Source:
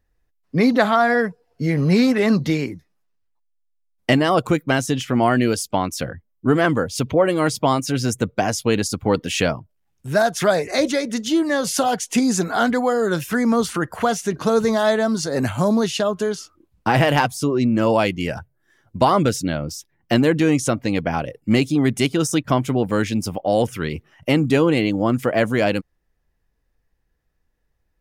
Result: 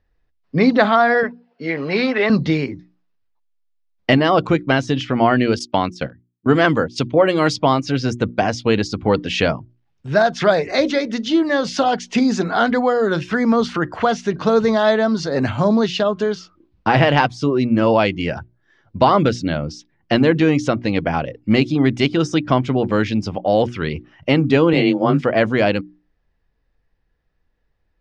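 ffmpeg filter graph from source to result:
-filter_complex "[0:a]asettb=1/sr,asplit=3[a][b][c];[a]atrim=end=1.234[d];[b]atrim=start=1.23:end=2.3,asetpts=PTS-STARTPTS,afade=t=in:d=0.004:c=qsin,afade=t=out:st=1.066:d=0.004:c=qsin,highpass=360,lowpass=3k,highshelf=f=2.1k:g=7.5[e];[c]atrim=start=2.296[f];[d][e]acrossfade=d=0.004:c1=hsin:c2=qsin[g];[g][f]acrossfade=d=0.004:c1=qsin:c2=hsin,asettb=1/sr,asplit=3[h][i][j];[h]atrim=end=5.594[k];[i]atrim=start=5.59:end=7.56,asetpts=PTS-STARTPTS,afade=t=in:d=0.004:c=qsin,afade=t=out:st=1.966:d=0.004:c=qsin,agate=range=-18dB:threshold=-28dB:ratio=16:release=100:detection=peak,highpass=79,highshelf=f=4.5k:g=11.5[l];[j]atrim=start=7.556[m];[k][l]acrossfade=d=0.004:c1=hsin:c2=qsin[n];[n][m]acrossfade=d=0.004:c1=qsin:c2=hsin,asettb=1/sr,asplit=3[o][p][q];[o]atrim=end=24.734[r];[p]atrim=start=24.73:end=25.21,asetpts=PTS-STARTPTS,afade=t=in:d=0.004:c=qsin,afade=t=out:st=0.476:d=0.004:c=qsin,afreqshift=22,asplit=2[s][t];[t]adelay=21,volume=-5dB[u];[s][u]amix=inputs=2:normalize=0,atrim=end_sample=21168[v];[q]atrim=start=25.206[w];[r][v]acrossfade=d=0.004:c1=hsin:c2=qsin[x];[x][w]acrossfade=d=0.004:c1=qsin:c2=hsin,lowpass=f=4.9k:w=0.5412,lowpass=f=4.9k:w=1.3066,bandreject=f=60:t=h:w=6,bandreject=f=120:t=h:w=6,bandreject=f=180:t=h:w=6,bandreject=f=240:t=h:w=6,bandreject=f=300:t=h:w=6,bandreject=f=360:t=h:w=6,volume=2.5dB"

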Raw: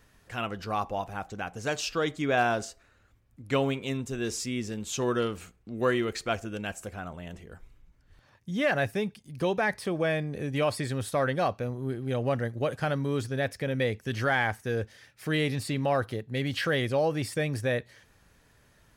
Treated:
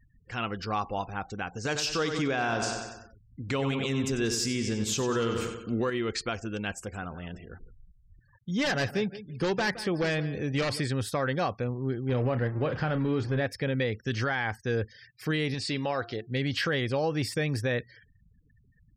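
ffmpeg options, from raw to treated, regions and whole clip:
-filter_complex "[0:a]asettb=1/sr,asplit=3[a][b][c];[a]atrim=end=1.654[d];[b]atrim=start=1.65:end=5.9,asetpts=PTS-STARTPTS,afade=t=in:d=0.004:c=qsin,afade=t=out:st=4.246:d=0.004:c=qsin,acontrast=47,aecho=1:1:94|188|282|376|470|564:0.355|0.185|0.0959|0.0499|0.0259|0.0135,atrim=end_sample=187425[e];[c]atrim=start=5.896[f];[d][e]acrossfade=d=0.004:c1=hsin:c2=qsin[g];[g][f]acrossfade=d=0.004:c1=qsin:c2=hsin,asettb=1/sr,asplit=3[h][i][j];[h]atrim=end=6.734[k];[i]atrim=start=6.73:end=10.8,asetpts=PTS-STARTPTS,afade=t=in:d=0.004:c=qsin,afade=t=out:st=4.066:d=0.004:c=qsin,aeval=exprs='0.0794*(abs(mod(val(0)/0.0794+3,4)-2)-1)':c=same,aecho=1:1:168|336|504:0.178|0.0445|0.0111,atrim=end_sample=179487[l];[j]atrim=start=10.796[m];[k][l]acrossfade=d=0.004:c1=hsin:c2=qsin[n];[n][m]acrossfade=d=0.004:c1=qsin:c2=hsin,asettb=1/sr,asplit=3[o][p][q];[o]atrim=end=12.094[r];[p]atrim=start=12.09:end=13.47,asetpts=PTS-STARTPTS,afade=t=in:d=0.004:c=qsin,afade=t=out:st=1.376:d=0.004:c=qsin,aeval=exprs='val(0)+0.5*0.0158*sgn(val(0))':c=same,aemphasis=mode=reproduction:type=75fm,asplit=2[s][t];[t]adelay=32,volume=-11dB[u];[s][u]amix=inputs=2:normalize=0,atrim=end_sample=60858[v];[q]atrim=start=13.466[w];[r][v]acrossfade=d=0.004:c1=hsin:c2=qsin[x];[x][w]acrossfade=d=0.004:c1=qsin:c2=hsin,asettb=1/sr,asplit=3[y][z][aa];[y]atrim=end=15.544[ab];[z]atrim=start=15.54:end=16.27,asetpts=PTS-STARTPTS,afade=t=in:d=0.004:c=qsin,afade=t=out:st=0.726:d=0.004:c=qsin,lowpass=5.1k,bass=f=250:g=-7,treble=f=4k:g=8,bandreject=f=349.7:t=h:w=4,bandreject=f=699.4:t=h:w=4,bandreject=f=1.0491k:t=h:w=4,bandreject=f=1.3988k:t=h:w=4,bandreject=f=1.7485k:t=h:w=4,bandreject=f=2.0982k:t=h:w=4,bandreject=f=2.4479k:t=h:w=4,bandreject=f=2.7976k:t=h:w=4,bandreject=f=3.1473k:t=h:w=4,bandreject=f=3.497k:t=h:w=4,bandreject=f=3.8467k:t=h:w=4,bandreject=f=4.1964k:t=h:w=4,bandreject=f=4.5461k:t=h:w=4,bandreject=f=4.8958k:t=h:w=4,bandreject=f=5.2455k:t=h:w=4[ac];[aa]atrim=start=16.266[ad];[ab][ac]acrossfade=d=0.004:c1=hsin:c2=qsin[ae];[ae][ad]acrossfade=d=0.004:c1=qsin:c2=hsin,equalizer=f=630:t=o:w=0.33:g=-6,equalizer=f=5k:t=o:w=0.33:g=5,equalizer=f=10k:t=o:w=0.33:g=-5,afftfilt=real='re*gte(hypot(re,im),0.00282)':imag='im*gte(hypot(re,im),0.00282)':win_size=1024:overlap=0.75,alimiter=limit=-21.5dB:level=0:latency=1:release=132,volume=2dB"

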